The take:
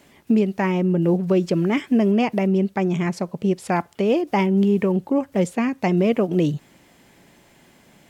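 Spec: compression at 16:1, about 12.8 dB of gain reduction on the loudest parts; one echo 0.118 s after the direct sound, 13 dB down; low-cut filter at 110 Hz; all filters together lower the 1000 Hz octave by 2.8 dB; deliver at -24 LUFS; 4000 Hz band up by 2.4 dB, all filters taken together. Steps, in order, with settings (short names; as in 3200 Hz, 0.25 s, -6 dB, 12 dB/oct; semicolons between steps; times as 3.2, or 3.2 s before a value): HPF 110 Hz; bell 1000 Hz -4 dB; bell 4000 Hz +4 dB; compressor 16:1, threshold -27 dBFS; echo 0.118 s -13 dB; gain +8 dB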